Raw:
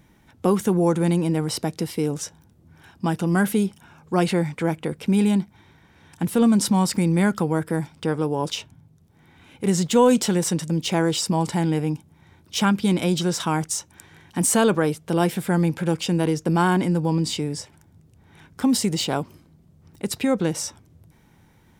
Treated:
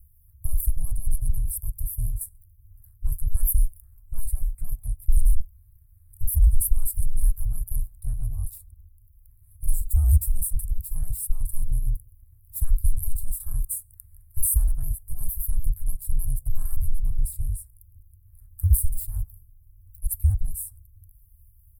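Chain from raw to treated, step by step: trilling pitch shifter +1.5 st, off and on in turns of 76 ms; high shelf 5100 Hz +9 dB; ring modulator 190 Hz; in parallel at -2.5 dB: limiter -13 dBFS, peak gain reduction 9 dB; on the sum: inverse Chebyshev band-stop 180–6600 Hz, stop band 40 dB; low shelf 290 Hz +4 dB; speakerphone echo 0.15 s, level -27 dB; short-mantissa float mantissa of 8-bit; on a send at -21 dB: reverb RT60 0.80 s, pre-delay 3 ms; on the sum: gain +2.5 dB

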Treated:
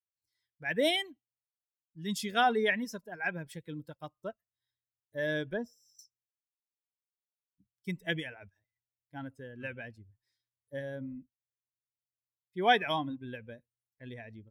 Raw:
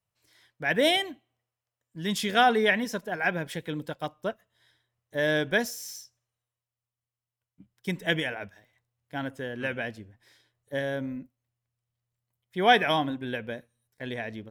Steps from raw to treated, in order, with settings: per-bin expansion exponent 1.5; 5.53–5.99 running mean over 20 samples; gain -3.5 dB

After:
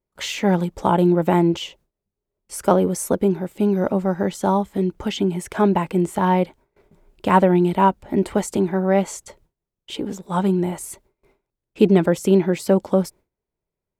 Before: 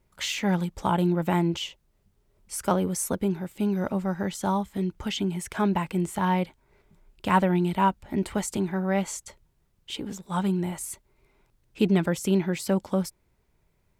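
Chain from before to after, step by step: gate with hold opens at -51 dBFS; bell 450 Hz +9 dB 2.2 oct; gain +1.5 dB

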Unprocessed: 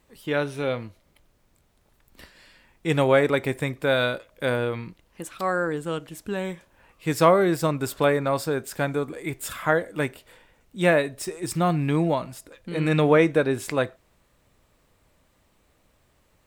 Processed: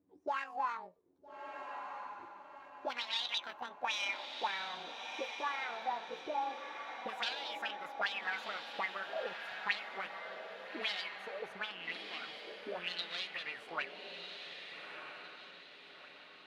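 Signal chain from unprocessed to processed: gliding pitch shift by +11 st ending unshifted; dynamic EQ 390 Hz, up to -5 dB, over -32 dBFS, Q 0.73; one-sided clip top -30.5 dBFS; auto-wah 270–3800 Hz, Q 6, up, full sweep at -22.5 dBFS; diffused feedback echo 1.3 s, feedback 45%, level -6 dB; gain +3.5 dB

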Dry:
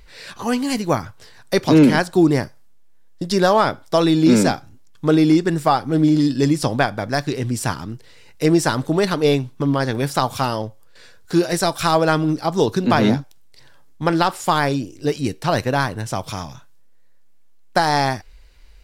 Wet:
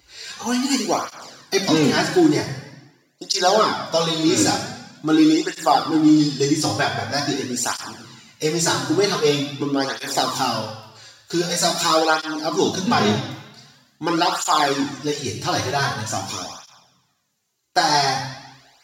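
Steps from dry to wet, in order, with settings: tilt +2.5 dB/oct; reverb RT60 1.0 s, pre-delay 3 ms, DRR -0.5 dB; tape flanging out of phase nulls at 0.45 Hz, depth 4.7 ms; gain -4 dB

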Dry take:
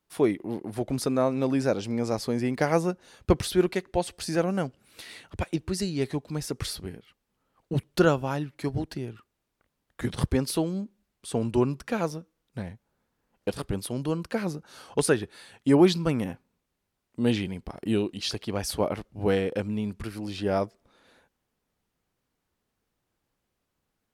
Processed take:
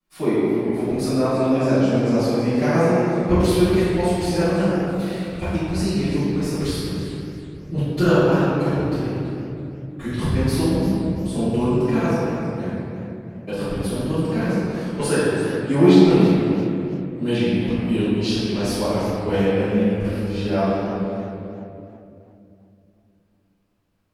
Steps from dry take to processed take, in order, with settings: 3.42–5.76 high shelf 12000 Hz +6 dB; reverb RT60 2.8 s, pre-delay 4 ms, DRR -19.5 dB; warbling echo 0.332 s, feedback 31%, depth 200 cents, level -13 dB; gain -16 dB

